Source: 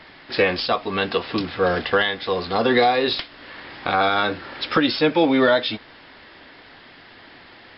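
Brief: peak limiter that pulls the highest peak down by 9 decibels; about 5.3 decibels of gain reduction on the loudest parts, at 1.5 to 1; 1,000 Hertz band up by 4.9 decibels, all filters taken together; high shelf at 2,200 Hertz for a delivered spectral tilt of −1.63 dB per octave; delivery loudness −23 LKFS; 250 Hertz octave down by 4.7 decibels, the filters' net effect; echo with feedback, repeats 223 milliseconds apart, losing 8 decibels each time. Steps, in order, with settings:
parametric band 250 Hz −6.5 dB
parametric band 1,000 Hz +8.5 dB
high-shelf EQ 2,200 Hz −4 dB
downward compressor 1.5 to 1, threshold −25 dBFS
brickwall limiter −15 dBFS
repeating echo 223 ms, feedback 40%, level −8 dB
level +3.5 dB

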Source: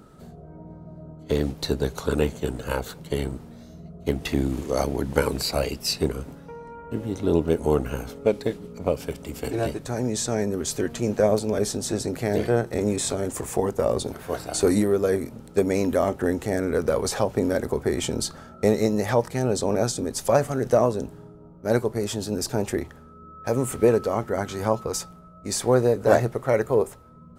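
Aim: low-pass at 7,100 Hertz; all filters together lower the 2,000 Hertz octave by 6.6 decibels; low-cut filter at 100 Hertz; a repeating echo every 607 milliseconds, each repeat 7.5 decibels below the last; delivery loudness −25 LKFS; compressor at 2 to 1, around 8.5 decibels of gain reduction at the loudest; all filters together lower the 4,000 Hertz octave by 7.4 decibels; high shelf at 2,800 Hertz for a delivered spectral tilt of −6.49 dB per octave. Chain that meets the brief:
high-pass filter 100 Hz
low-pass filter 7,100 Hz
parametric band 2,000 Hz −7 dB
high-shelf EQ 2,800 Hz −4 dB
parametric band 4,000 Hz −3.5 dB
downward compressor 2 to 1, threshold −29 dBFS
repeating echo 607 ms, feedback 42%, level −7.5 dB
level +6 dB

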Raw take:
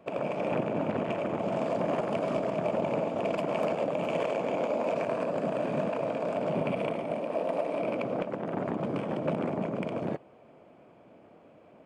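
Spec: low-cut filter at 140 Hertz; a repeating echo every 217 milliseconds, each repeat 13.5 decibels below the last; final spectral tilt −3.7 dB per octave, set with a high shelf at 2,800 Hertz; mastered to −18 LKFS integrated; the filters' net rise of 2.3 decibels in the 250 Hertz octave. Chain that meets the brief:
high-pass filter 140 Hz
parametric band 250 Hz +3.5 dB
high-shelf EQ 2,800 Hz +6 dB
repeating echo 217 ms, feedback 21%, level −13.5 dB
level +11.5 dB

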